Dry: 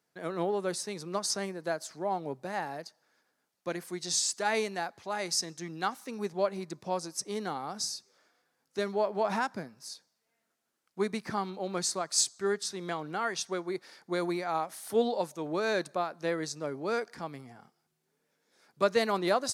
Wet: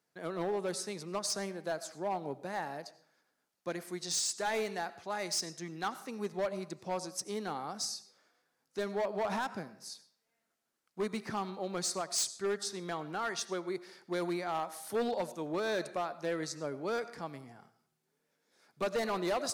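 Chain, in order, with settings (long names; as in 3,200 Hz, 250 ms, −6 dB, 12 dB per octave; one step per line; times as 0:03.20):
comb and all-pass reverb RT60 0.59 s, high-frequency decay 0.7×, pre-delay 50 ms, DRR 16 dB
gain into a clipping stage and back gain 25.5 dB
level −2.5 dB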